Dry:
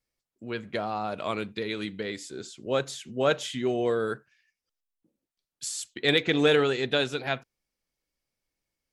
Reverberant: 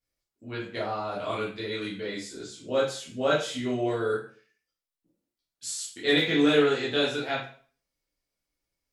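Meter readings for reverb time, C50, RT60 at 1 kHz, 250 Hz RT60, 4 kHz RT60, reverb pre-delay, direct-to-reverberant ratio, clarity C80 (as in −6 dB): 0.45 s, 5.0 dB, 0.45 s, 0.45 s, 0.40 s, 5 ms, −7.5 dB, 10.0 dB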